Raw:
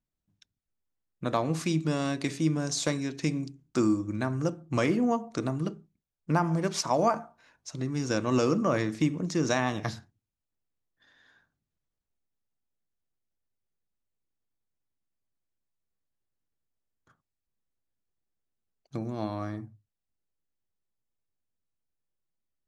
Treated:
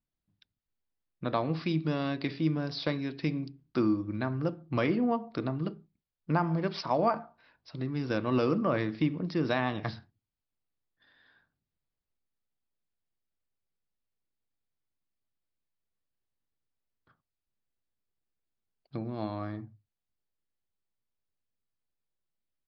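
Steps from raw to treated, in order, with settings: downsampling 11025 Hz; gain -2 dB

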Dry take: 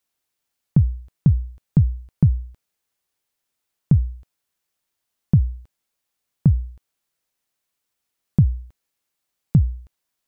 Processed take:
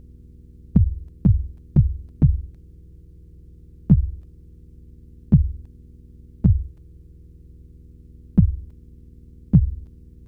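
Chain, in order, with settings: buzz 60 Hz, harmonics 6, -45 dBFS -8 dB/oct; harmoniser -12 st -6 dB, +5 st -3 dB; gain -2 dB

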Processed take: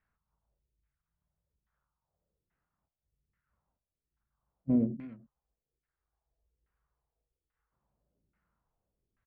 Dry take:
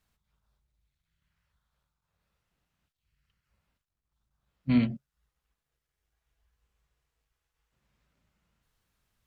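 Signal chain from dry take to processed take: limiter -16.5 dBFS, peak gain reduction 4 dB; dynamic EQ 380 Hz, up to +7 dB, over -39 dBFS, Q 1; echo 0.296 s -17.5 dB; LFO low-pass saw down 1.2 Hz 330–1900 Hz; record warp 78 rpm, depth 100 cents; gain -6.5 dB

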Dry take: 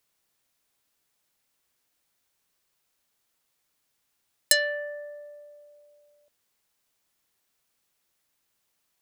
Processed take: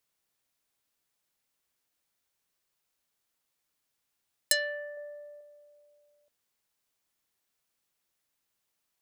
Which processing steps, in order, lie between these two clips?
4.97–5.41 low shelf 430 Hz +7.5 dB; gain -5.5 dB

